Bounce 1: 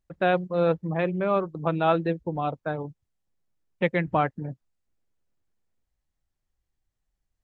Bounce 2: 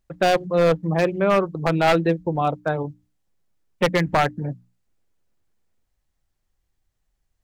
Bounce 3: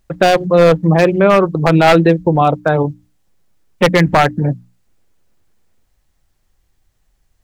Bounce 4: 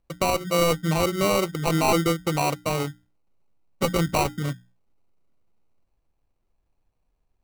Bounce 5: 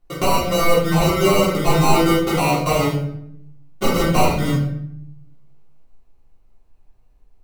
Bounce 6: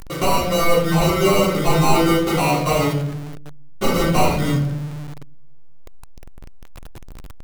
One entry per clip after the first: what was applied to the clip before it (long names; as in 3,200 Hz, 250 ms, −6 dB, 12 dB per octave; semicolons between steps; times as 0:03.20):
wave folding −16.5 dBFS; mains-hum notches 60/120/180/240/300 Hz; level +6.5 dB
boost into a limiter +13 dB; level −1 dB
decimation without filtering 26×; tuned comb filter 810 Hz, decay 0.2 s, harmonics all, mix 40%; level −7.5 dB
downward compressor, threshold −23 dBFS, peak gain reduction 6.5 dB; convolution reverb RT60 0.70 s, pre-delay 3 ms, DRR −11 dB; level −1 dB
converter with a step at zero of −28.5 dBFS; level −1 dB